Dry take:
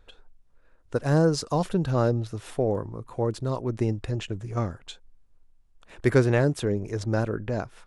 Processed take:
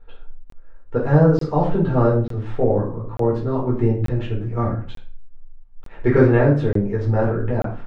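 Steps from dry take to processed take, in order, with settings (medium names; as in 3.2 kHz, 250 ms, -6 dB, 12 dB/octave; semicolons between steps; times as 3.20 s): low-pass 1.9 kHz 12 dB/octave; bass shelf 490 Hz +2 dB; reverberation RT60 0.40 s, pre-delay 7 ms, DRR -5.5 dB; crackling interface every 0.89 s, samples 1024, zero, from 0.50 s; trim -2.5 dB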